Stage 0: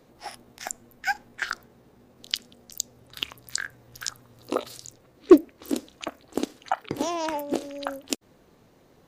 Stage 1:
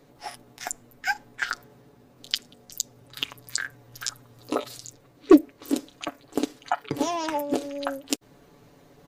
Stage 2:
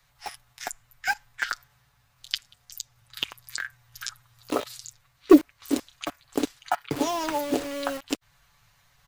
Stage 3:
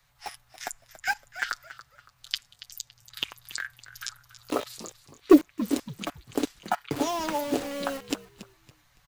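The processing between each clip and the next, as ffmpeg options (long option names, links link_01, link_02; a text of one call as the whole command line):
ffmpeg -i in.wav -af "aecho=1:1:7:0.54,areverse,acompressor=mode=upward:threshold=-48dB:ratio=2.5,areverse" out.wav
ffmpeg -i in.wav -filter_complex "[0:a]acrossover=split=110|980|4000[link_01][link_02][link_03][link_04];[link_02]acrusher=bits=5:mix=0:aa=0.000001[link_05];[link_04]alimiter=limit=-16dB:level=0:latency=1:release=203[link_06];[link_01][link_05][link_03][link_06]amix=inputs=4:normalize=0" out.wav
ffmpeg -i in.wav -filter_complex "[0:a]asplit=4[link_01][link_02][link_03][link_04];[link_02]adelay=281,afreqshift=-80,volume=-15.5dB[link_05];[link_03]adelay=562,afreqshift=-160,volume=-25.4dB[link_06];[link_04]adelay=843,afreqshift=-240,volume=-35.3dB[link_07];[link_01][link_05][link_06][link_07]amix=inputs=4:normalize=0,volume=-1.5dB" out.wav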